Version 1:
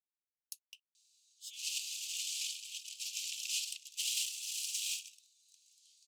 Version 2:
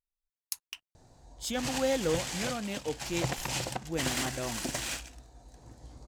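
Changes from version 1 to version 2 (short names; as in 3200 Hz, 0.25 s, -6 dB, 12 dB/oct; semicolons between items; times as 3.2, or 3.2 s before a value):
speech +11.0 dB; master: remove steep high-pass 2600 Hz 72 dB/oct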